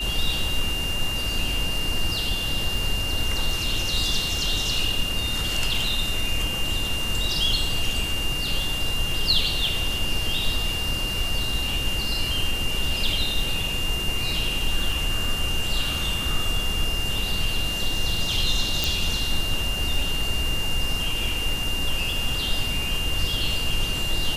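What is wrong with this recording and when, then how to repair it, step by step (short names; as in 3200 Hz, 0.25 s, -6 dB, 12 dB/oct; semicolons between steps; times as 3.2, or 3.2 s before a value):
crackle 23/s -29 dBFS
tone 2800 Hz -27 dBFS
18.84 pop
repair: de-click; notch 2800 Hz, Q 30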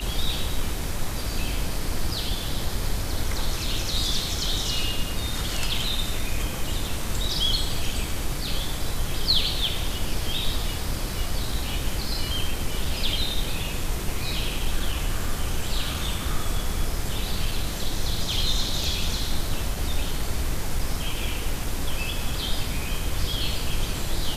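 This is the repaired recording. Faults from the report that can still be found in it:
18.84 pop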